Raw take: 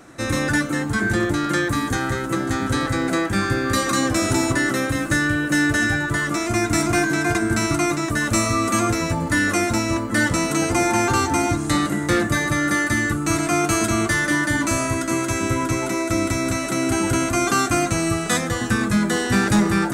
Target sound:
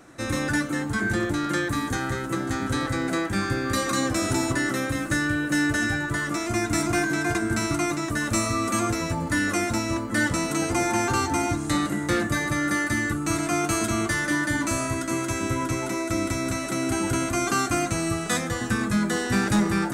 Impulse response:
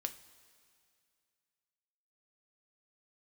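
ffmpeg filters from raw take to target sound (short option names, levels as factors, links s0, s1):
-filter_complex "[0:a]asplit=2[s0][s1];[1:a]atrim=start_sample=2205,atrim=end_sample=3528[s2];[s1][s2]afir=irnorm=-1:irlink=0,volume=0.708[s3];[s0][s3]amix=inputs=2:normalize=0,volume=0.376"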